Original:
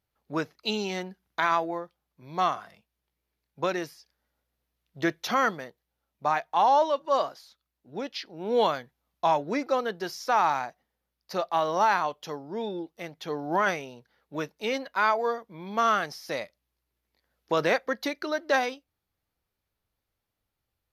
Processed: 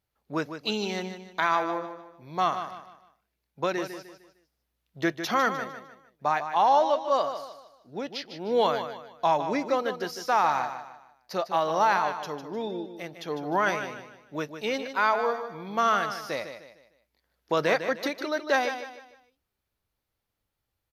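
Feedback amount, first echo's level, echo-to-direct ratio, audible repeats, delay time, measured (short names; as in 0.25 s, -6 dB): 36%, -9.5 dB, -9.0 dB, 3, 0.152 s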